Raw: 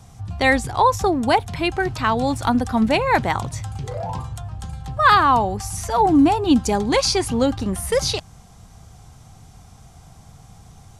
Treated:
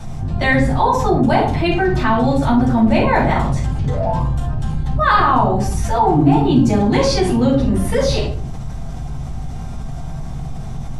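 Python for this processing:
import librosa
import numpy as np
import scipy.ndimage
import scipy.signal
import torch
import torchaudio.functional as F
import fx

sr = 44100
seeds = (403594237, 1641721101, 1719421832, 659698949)

y = fx.octave_divider(x, sr, octaves=1, level_db=-5.0)
y = fx.high_shelf(y, sr, hz=5000.0, db=-10.0)
y = fx.room_shoebox(y, sr, seeds[0], volume_m3=380.0, walls='furnished', distance_m=7.3)
y = fx.env_flatten(y, sr, amount_pct=50)
y = y * librosa.db_to_amplitude(-13.5)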